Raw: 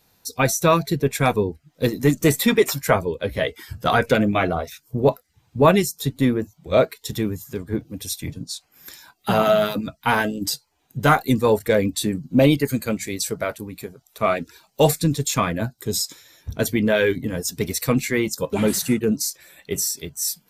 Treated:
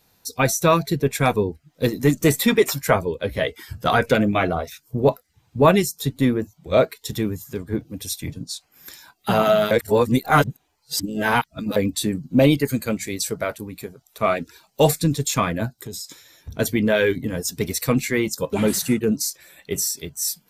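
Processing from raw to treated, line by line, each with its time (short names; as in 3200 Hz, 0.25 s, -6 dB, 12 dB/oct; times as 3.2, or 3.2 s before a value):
9.71–11.76 reverse
15.8–16.55 compressor 5:1, threshold -30 dBFS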